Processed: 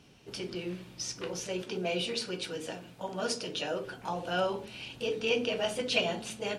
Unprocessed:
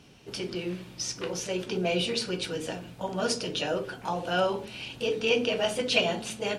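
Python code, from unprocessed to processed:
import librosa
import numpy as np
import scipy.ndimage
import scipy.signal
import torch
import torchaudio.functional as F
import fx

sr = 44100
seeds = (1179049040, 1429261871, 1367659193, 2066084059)

y = fx.low_shelf(x, sr, hz=110.0, db=-10.5, at=(1.62, 3.83))
y = y * 10.0 ** (-4.0 / 20.0)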